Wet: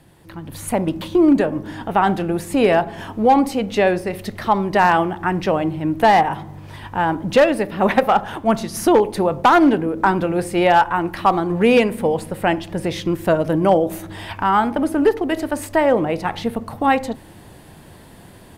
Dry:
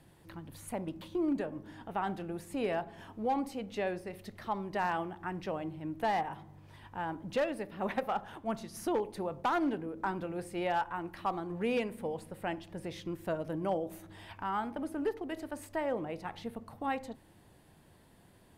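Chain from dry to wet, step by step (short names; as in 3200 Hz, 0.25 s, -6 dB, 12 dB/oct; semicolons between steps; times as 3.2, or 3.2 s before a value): AGC gain up to 9 dB; gain +9 dB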